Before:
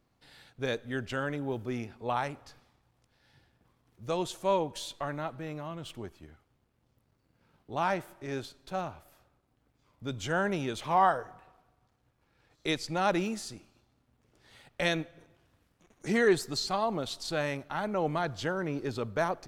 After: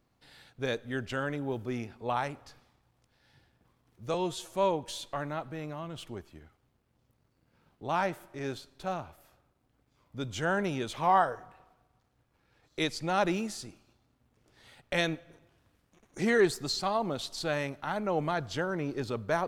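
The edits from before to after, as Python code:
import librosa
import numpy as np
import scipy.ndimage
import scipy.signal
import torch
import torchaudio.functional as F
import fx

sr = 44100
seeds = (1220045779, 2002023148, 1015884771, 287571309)

y = fx.edit(x, sr, fx.stretch_span(start_s=4.14, length_s=0.25, factor=1.5), tone=tone)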